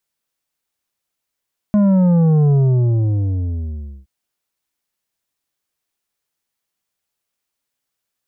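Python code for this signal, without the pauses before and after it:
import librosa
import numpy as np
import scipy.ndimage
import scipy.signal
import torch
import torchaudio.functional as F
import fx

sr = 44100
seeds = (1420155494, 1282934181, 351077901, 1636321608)

y = fx.sub_drop(sr, level_db=-11.0, start_hz=210.0, length_s=2.32, drive_db=8.0, fade_s=1.54, end_hz=65.0)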